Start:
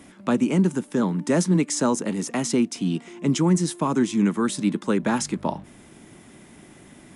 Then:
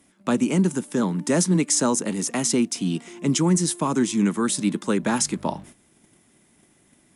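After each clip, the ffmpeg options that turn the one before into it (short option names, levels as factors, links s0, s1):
-af "aemphasis=mode=production:type=cd,agate=range=0.224:threshold=0.00708:ratio=16:detection=peak"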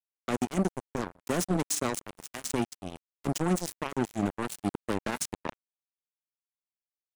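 -af "acrusher=bits=2:mix=0:aa=0.5,volume=0.376"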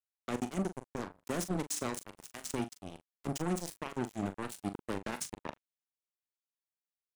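-filter_complex "[0:a]asplit=2[s0][s1];[s1]adelay=41,volume=0.282[s2];[s0][s2]amix=inputs=2:normalize=0,volume=0.473"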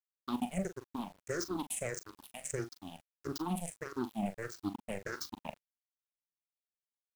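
-af "afftfilt=real='re*pow(10,22/40*sin(2*PI*(0.52*log(max(b,1)*sr/1024/100)/log(2)-(-1.6)*(pts-256)/sr)))':imag='im*pow(10,22/40*sin(2*PI*(0.52*log(max(b,1)*sr/1024/100)/log(2)-(-1.6)*(pts-256)/sr)))':win_size=1024:overlap=0.75,acrusher=bits=8:mix=0:aa=0.000001,volume=0.473"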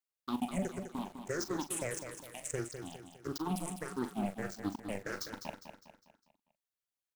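-af "aecho=1:1:203|406|609|812|1015:0.376|0.165|0.0728|0.032|0.0141"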